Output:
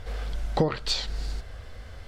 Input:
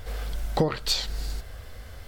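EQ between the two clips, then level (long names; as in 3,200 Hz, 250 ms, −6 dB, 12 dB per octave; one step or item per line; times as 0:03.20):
high-frequency loss of the air 56 metres
0.0 dB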